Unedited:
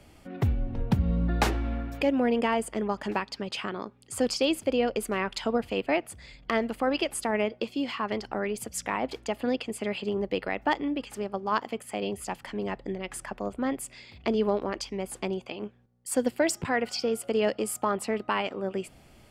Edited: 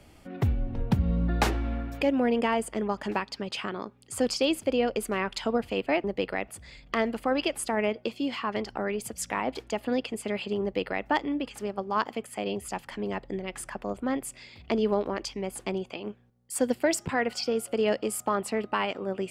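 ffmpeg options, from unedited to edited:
-filter_complex "[0:a]asplit=3[s0][s1][s2];[s0]atrim=end=6.042[s3];[s1]atrim=start=10.178:end=10.622[s4];[s2]atrim=start=6.038[s5];[s3][s4]acrossfade=d=0.004:c1=hsin:c2=hsin[s6];[s6][s5]acrossfade=d=0.004:c1=hsin:c2=hsin"

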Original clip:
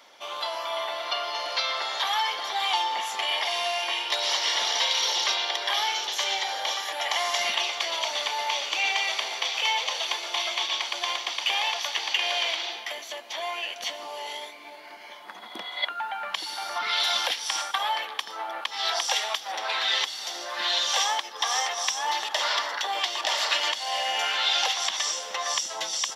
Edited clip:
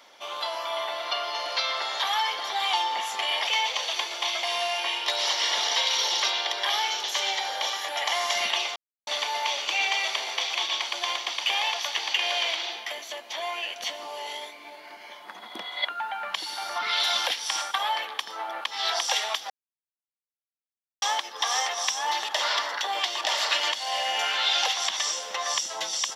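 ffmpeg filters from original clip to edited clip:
-filter_complex "[0:a]asplit=8[s0][s1][s2][s3][s4][s5][s6][s7];[s0]atrim=end=3.472[s8];[s1]atrim=start=9.588:end=10.552[s9];[s2]atrim=start=3.468:end=7.8,asetpts=PTS-STARTPTS,afade=t=out:st=4.328:d=0.004:c=hsin[s10];[s3]atrim=start=7.8:end=8.11,asetpts=PTS-STARTPTS,volume=0[s11];[s4]atrim=start=8.11:end=9.592,asetpts=PTS-STARTPTS,afade=t=in:d=0.004:c=hsin[s12];[s5]atrim=start=10.548:end=19.5,asetpts=PTS-STARTPTS,afade=t=out:st=8.948:d=0.004:c=hsin[s13];[s6]atrim=start=19.5:end=21.02,asetpts=PTS-STARTPTS,volume=0[s14];[s7]atrim=start=21.02,asetpts=PTS-STARTPTS,afade=t=in:d=0.004:c=hsin[s15];[s8][s9]acrossfade=d=0.004:c1=hsin:c2=hsin[s16];[s10][s11][s12]concat=n=3:v=0:a=1[s17];[s16][s17]acrossfade=d=0.004:c1=hsin:c2=hsin[s18];[s13][s14][s15]concat=n=3:v=0:a=1[s19];[s18][s19]acrossfade=d=0.004:c1=hsin:c2=hsin"

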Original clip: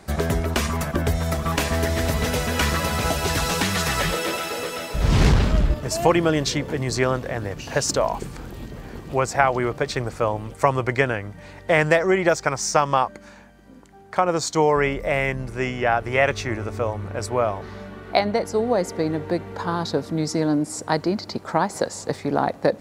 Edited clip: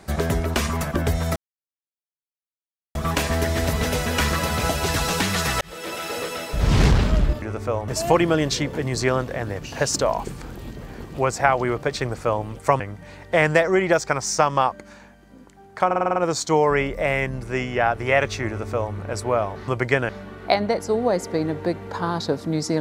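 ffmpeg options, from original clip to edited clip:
-filter_complex "[0:a]asplit=14[s0][s1][s2][s3][s4][s5][s6][s7][s8][s9][s10][s11][s12][s13];[s0]atrim=end=1.36,asetpts=PTS-STARTPTS,afade=t=out:st=1.356:d=0.004:c=hsin,apad=pad_dur=1.59[s14];[s1]atrim=start=1.36:end=4.02,asetpts=PTS-STARTPTS,afade=t=in:d=0.004:c=hsin,afade=t=out:st=2.656:d=0.004:c=hsin[s15];[s2]atrim=start=4.02:end=5.832,asetpts=PTS-STARTPTS,afade=t=in:d=0.54[s16];[s3]atrim=start=16.538:end=17.002[s17];[s4]atrim=start=5.828:end=10.752[s18];[s5]atrim=start=11.158:end=14.272[s19];[s6]atrim=start=14.218:end=14.272[s20];[s7]atrim=start=14.218:end=14.272[s21];[s8]atrim=start=14.218:end=14.272[s22];[s9]atrim=start=14.218:end=14.272[s23];[s10]atrim=start=14.218:end=14.272[s24];[s11]atrim=start=14.218:end=17.742[s25];[s12]atrim=start=10.748:end=11.162[s26];[s13]atrim=start=17.738[s27];[s14][s15][s16]concat=n=3:v=0:a=1[s28];[s28][s17]acrossfade=d=0.004:c1=hsin:c2=hsin[s29];[s29][s18]acrossfade=d=0.004:c1=hsin:c2=hsin[s30];[s30][s19]acrossfade=d=0.004:c1=hsin:c2=hsin[s31];[s31][s20]acrossfade=d=0.004:c1=hsin:c2=hsin[s32];[s32][s21]acrossfade=d=0.004:c1=hsin:c2=hsin[s33];[s33][s22]acrossfade=d=0.004:c1=hsin:c2=hsin[s34];[s34][s23]acrossfade=d=0.004:c1=hsin:c2=hsin[s35];[s35][s24]acrossfade=d=0.004:c1=hsin:c2=hsin[s36];[s36][s25]acrossfade=d=0.004:c1=hsin:c2=hsin[s37];[s37][s26]acrossfade=d=0.004:c1=hsin:c2=hsin[s38];[s38][s27]acrossfade=d=0.004:c1=hsin:c2=hsin"

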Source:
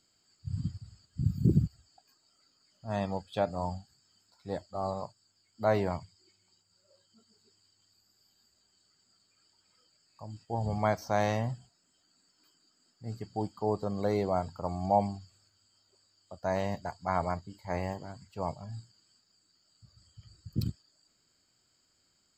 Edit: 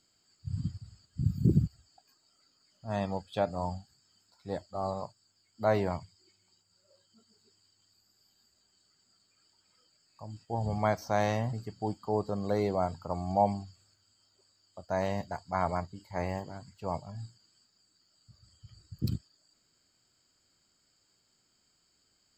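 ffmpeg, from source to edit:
-filter_complex "[0:a]asplit=2[s0][s1];[s0]atrim=end=11.532[s2];[s1]atrim=start=13.068[s3];[s2][s3]acrossfade=d=0.004:c1=hsin:c2=hsin"

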